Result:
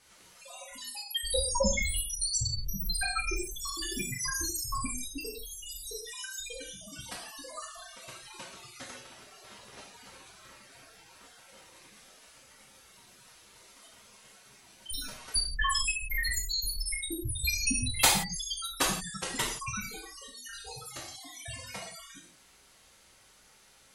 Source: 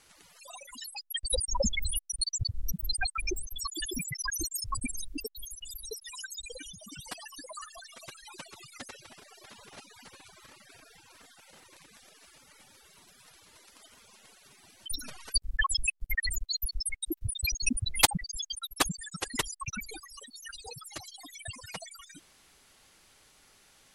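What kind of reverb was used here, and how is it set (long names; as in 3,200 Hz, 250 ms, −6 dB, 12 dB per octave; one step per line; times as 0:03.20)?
reverb whose tail is shaped and stops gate 200 ms falling, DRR −4.5 dB
level −4.5 dB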